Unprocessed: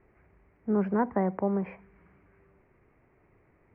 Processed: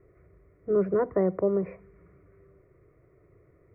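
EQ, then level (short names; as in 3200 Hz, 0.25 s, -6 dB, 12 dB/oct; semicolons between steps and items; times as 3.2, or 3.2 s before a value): bell 190 Hz +12 dB 2.9 oct; fixed phaser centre 850 Hz, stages 6; notch 1600 Hz, Q 6; 0.0 dB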